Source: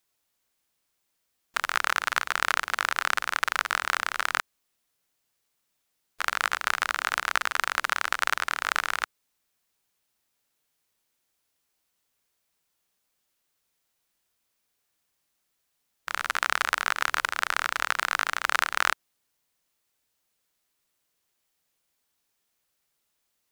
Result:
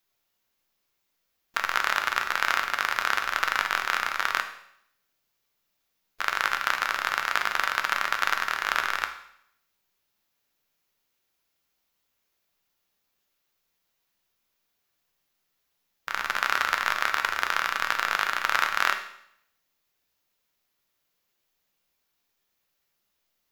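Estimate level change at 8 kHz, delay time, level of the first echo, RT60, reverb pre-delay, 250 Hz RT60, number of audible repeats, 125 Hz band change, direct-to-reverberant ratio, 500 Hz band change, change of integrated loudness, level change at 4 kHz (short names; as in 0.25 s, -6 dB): -3.0 dB, none, none, 0.70 s, 5 ms, 0.70 s, none, n/a, 5.0 dB, +1.0 dB, +1.0 dB, +0.5 dB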